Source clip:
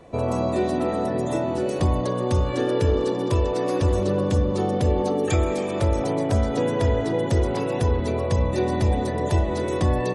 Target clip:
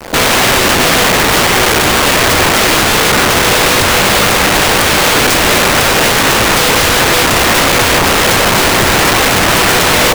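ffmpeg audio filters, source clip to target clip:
-filter_complex "[0:a]equalizer=f=125:t=o:w=1:g=5,equalizer=f=250:t=o:w=1:g=5,equalizer=f=500:t=o:w=1:g=9,equalizer=f=1k:t=o:w=1:g=8,equalizer=f=4k:t=o:w=1:g=5,asplit=2[a][b];[b]acontrast=76,volume=0dB[c];[a][c]amix=inputs=2:normalize=0,acrusher=bits=3:mix=0:aa=0.000001,aeval=exprs='(mod(1.78*val(0)+1,2)-1)/1.78':c=same"

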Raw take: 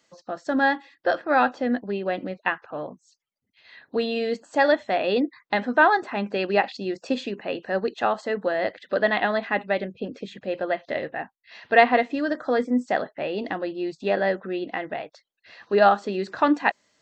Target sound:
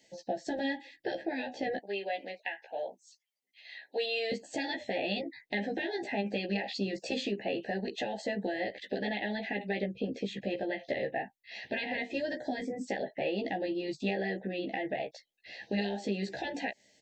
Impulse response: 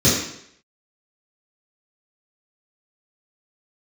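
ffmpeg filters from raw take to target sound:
-filter_complex "[0:a]asettb=1/sr,asplit=3[a][b][c];[a]atrim=end=1.774[d];[b]atrim=start=1.77:end=4.32,asetpts=PTS-STARTPTS,afade=t=in:d=0.004:c=qsin,afade=t=out:st=2.546:d=0.004:c=qsin,highpass=750[e];[c]atrim=start=4.316[f];[d][e]acrossfade=d=0.004:c1=hsin:c2=qsin[g];[g][f]acrossfade=d=0.004:c1=qsin:c2=hsin,afftfilt=real='re*lt(hypot(re,im),0.501)':imag='im*lt(hypot(re,im),0.501)':win_size=1024:overlap=0.75,alimiter=limit=-19dB:level=0:latency=1:release=90,acompressor=threshold=-31dB:ratio=6,asuperstop=centerf=1200:order=8:qfactor=1.4,asplit=2[h][i];[i]adelay=15,volume=-3dB[j];[h][j]amix=inputs=2:normalize=0"

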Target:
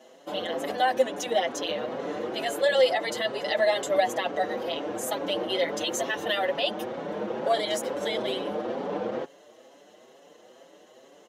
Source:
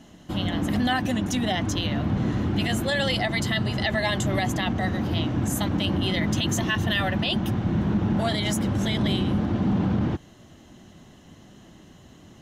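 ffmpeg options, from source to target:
-filter_complex "[0:a]highpass=f=500:t=q:w=4.9,atempo=1.1,asplit=2[a][b];[b]adelay=6,afreqshift=2.2[c];[a][c]amix=inputs=2:normalize=1"

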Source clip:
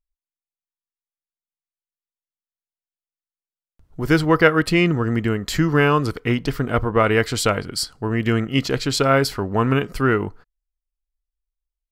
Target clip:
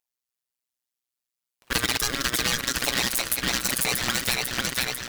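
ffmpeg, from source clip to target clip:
-filter_complex "[0:a]highpass=f=1.3k:p=1,aecho=1:1:1162|2324|3486|4648|5810:0.447|0.197|0.0865|0.0381|0.0167,asplit=2[a][b];[b]aeval=exprs='0.708*sin(PI/2*5.62*val(0)/0.708)':c=same,volume=-4dB[c];[a][c]amix=inputs=2:normalize=0,tremolo=f=53:d=0.857,asetrate=103194,aresample=44100,acompressor=threshold=-22dB:ratio=6,aeval=exprs='val(0)*sgn(sin(2*PI*830*n/s))':c=same"

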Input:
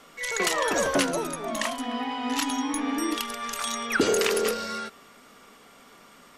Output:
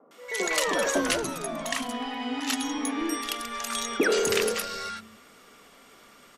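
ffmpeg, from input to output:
-filter_complex "[0:a]acrossover=split=190|940[a][b][c];[c]adelay=110[d];[a]adelay=270[e];[e][b][d]amix=inputs=3:normalize=0"

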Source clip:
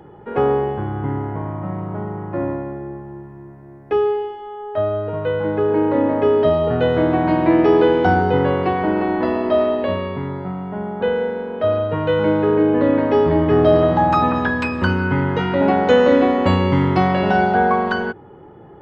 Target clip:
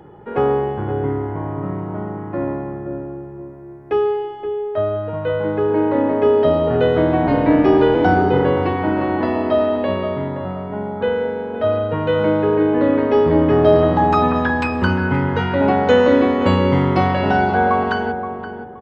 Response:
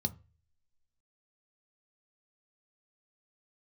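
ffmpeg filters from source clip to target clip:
-filter_complex "[0:a]asettb=1/sr,asplit=3[a][b][c];[a]atrim=end=7.274[d];[b]atrim=start=7.27:end=7.95,asetpts=PTS-STARTPTS,afade=t=in:d=0.004:c=qsin,afade=t=out:st=0.676:d=0.004:c=qsin,afreqshift=-31[e];[c]atrim=start=7.946[f];[d][e]acrossfade=d=0.004:c1=hsin:c2=qsin[g];[g][f]acrossfade=d=0.004:c1=qsin:c2=hsin,asplit=2[h][i];[i]adelay=523,lowpass=f=1.2k:p=1,volume=-8dB,asplit=2[j][k];[k]adelay=523,lowpass=f=1.2k:p=1,volume=0.28,asplit=2[l][m];[m]adelay=523,lowpass=f=1.2k:p=1,volume=0.28[n];[h][j][l][n]amix=inputs=4:normalize=0"

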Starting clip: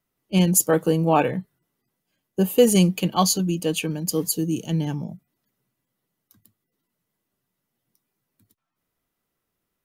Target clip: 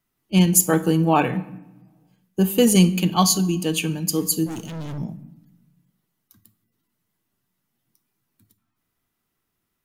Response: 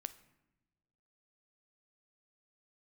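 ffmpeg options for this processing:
-filter_complex "[0:a]equalizer=f=530:w=2.2:g=-7,asettb=1/sr,asplit=3[a][b][c];[a]atrim=end=4.464[d];[b]atrim=start=4.46:end=4.98,asetpts=PTS-STARTPTS,afade=t=in:d=0.004:c=qsin,afade=t=out:st=0.516:d=0.004:c=qsin,volume=33dB,asoftclip=hard,volume=-33dB[e];[c]atrim=start=4.976[f];[d][e]acrossfade=d=0.004:c1=hsin:c2=qsin[g];[g][f]acrossfade=d=0.004:c1=qsin:c2=hsin[h];[1:a]atrim=start_sample=2205[i];[h][i]afir=irnorm=-1:irlink=0,volume=6dB"

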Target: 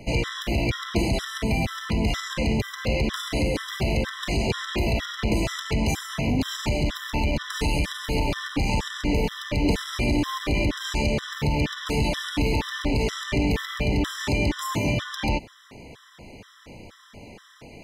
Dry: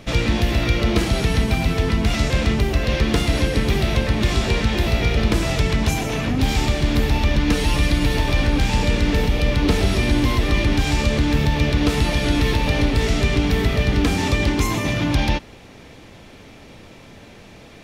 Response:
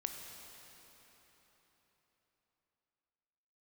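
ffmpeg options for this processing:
-filter_complex "[0:a]asoftclip=type=tanh:threshold=-13.5dB,acrossover=split=170[a][b];[a]acompressor=threshold=-21dB:ratio=10[c];[c][b]amix=inputs=2:normalize=0,afftfilt=real='re*gt(sin(2*PI*2.1*pts/sr)*(1-2*mod(floor(b*sr/1024/1000),2)),0)':imag='im*gt(sin(2*PI*2.1*pts/sr)*(1-2*mod(floor(b*sr/1024/1000),2)),0)':win_size=1024:overlap=0.75"

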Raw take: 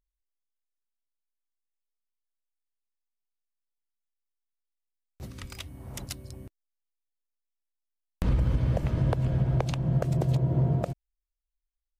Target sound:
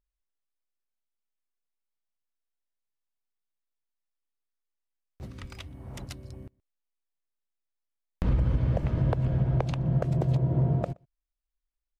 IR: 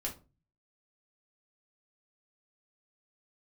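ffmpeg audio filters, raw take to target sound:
-filter_complex "[0:a]lowpass=f=2.8k:p=1,asplit=2[a][b];[b]adelay=122.4,volume=-28dB,highshelf=f=4k:g=-2.76[c];[a][c]amix=inputs=2:normalize=0"

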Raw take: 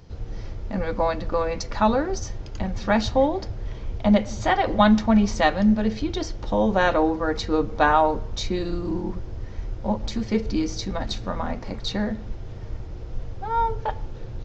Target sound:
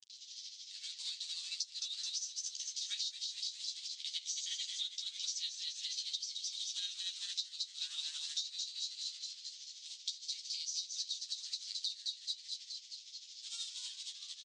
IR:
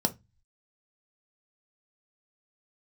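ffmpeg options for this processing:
-filter_complex "[0:a]asplit=8[a][b][c][d][e][f][g][h];[b]adelay=214,afreqshift=89,volume=-6dB[i];[c]adelay=428,afreqshift=178,volume=-10.9dB[j];[d]adelay=642,afreqshift=267,volume=-15.8dB[k];[e]adelay=856,afreqshift=356,volume=-20.6dB[l];[f]adelay=1070,afreqshift=445,volume=-25.5dB[m];[g]adelay=1284,afreqshift=534,volume=-30.4dB[n];[h]adelay=1498,afreqshift=623,volume=-35.3dB[o];[a][i][j][k][l][m][n][o]amix=inputs=8:normalize=0,aeval=exprs='sgn(val(0))*max(abs(val(0))-0.00891,0)':c=same,asuperpass=centerf=5500:order=8:qfactor=1.1,acompressor=mode=upward:threshold=-54dB:ratio=2.5,tremolo=f=13:d=0.54,asoftclip=type=tanh:threshold=-17dB,acompressor=threshold=-47dB:ratio=12,flanger=delay=8.8:depth=5.1:regen=-2:speed=0.16:shape=sinusoidal,volume=13.5dB" -ar 22050 -c:a libvorbis -b:a 48k

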